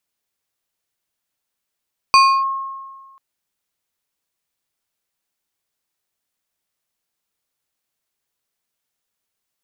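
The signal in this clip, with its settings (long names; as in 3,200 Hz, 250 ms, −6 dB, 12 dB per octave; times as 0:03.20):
two-operator FM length 1.04 s, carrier 1,080 Hz, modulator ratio 3.28, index 0.78, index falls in 0.30 s linear, decay 1.55 s, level −5.5 dB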